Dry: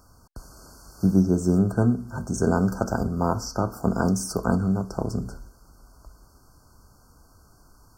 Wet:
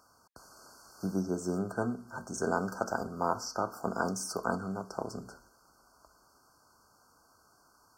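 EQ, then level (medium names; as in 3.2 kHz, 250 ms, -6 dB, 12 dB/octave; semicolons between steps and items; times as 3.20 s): high-pass 970 Hz 6 dB/octave; treble shelf 5.1 kHz -8.5 dB; 0.0 dB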